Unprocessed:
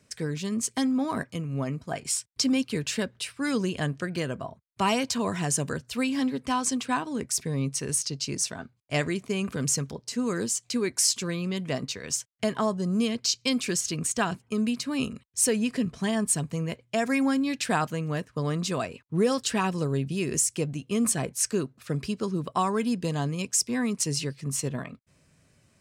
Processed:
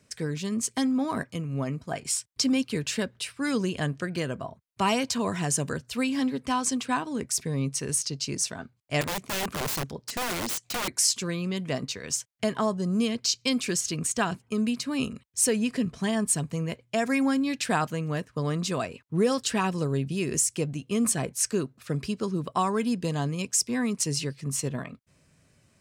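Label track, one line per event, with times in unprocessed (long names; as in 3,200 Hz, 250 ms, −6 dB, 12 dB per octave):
9.010000	10.880000	wrap-around overflow gain 25 dB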